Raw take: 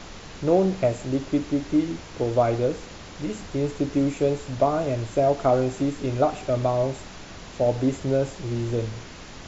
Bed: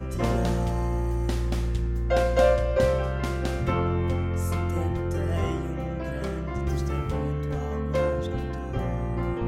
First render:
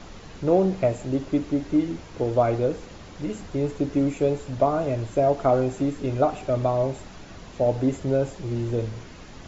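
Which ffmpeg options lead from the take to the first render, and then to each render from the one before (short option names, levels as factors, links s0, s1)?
-af "afftdn=nr=6:nf=-42"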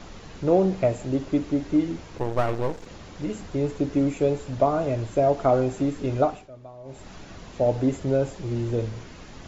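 -filter_complex "[0:a]asettb=1/sr,asplit=3[s0][s1][s2];[s0]atrim=end=2.184[s3];[s1]atrim=start=2.18:end=2.86,asetpts=PTS-STARTPTS,afade=t=in:d=0.004:c=qsin,afade=t=out:st=0.676:d=0.004:c=qsin,aeval=exprs='max(val(0),0)':c=same[s4];[s2]atrim=start=2.856[s5];[s3][s4]acrossfade=d=0.004:c1=hsin:c2=qsin[s6];[s6][s5]acrossfade=d=0.004:c1=qsin:c2=hsin,asplit=3[s7][s8][s9];[s7]atrim=end=6.49,asetpts=PTS-STARTPTS,afade=t=out:st=6.22:d=0.27:silence=0.0944061[s10];[s8]atrim=start=6.49:end=6.84,asetpts=PTS-STARTPTS,volume=0.0944[s11];[s9]atrim=start=6.84,asetpts=PTS-STARTPTS,afade=t=in:d=0.27:silence=0.0944061[s12];[s10][s11][s12]concat=n=3:v=0:a=1"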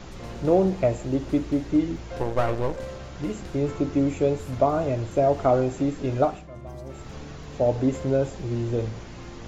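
-filter_complex "[1:a]volume=0.2[s0];[0:a][s0]amix=inputs=2:normalize=0"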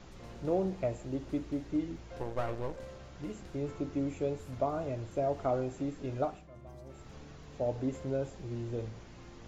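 -af "volume=0.282"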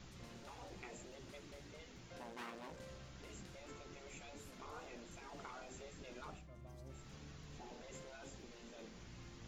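-af "equalizer=f=570:w=0.44:g=-8.5,afftfilt=real='re*lt(hypot(re,im),0.0251)':imag='im*lt(hypot(re,im),0.0251)':win_size=1024:overlap=0.75"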